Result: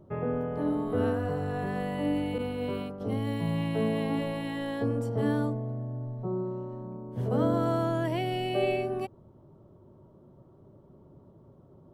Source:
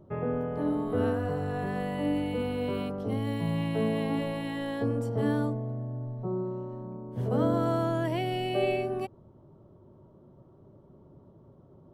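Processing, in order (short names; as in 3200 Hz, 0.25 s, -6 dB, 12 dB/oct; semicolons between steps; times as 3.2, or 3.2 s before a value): 2.38–3.01 expander -28 dBFS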